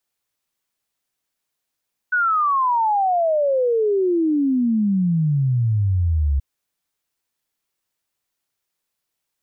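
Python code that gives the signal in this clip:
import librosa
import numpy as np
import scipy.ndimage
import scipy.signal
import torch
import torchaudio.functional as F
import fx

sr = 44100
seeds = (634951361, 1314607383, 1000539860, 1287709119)

y = fx.ess(sr, length_s=4.28, from_hz=1500.0, to_hz=67.0, level_db=-15.5)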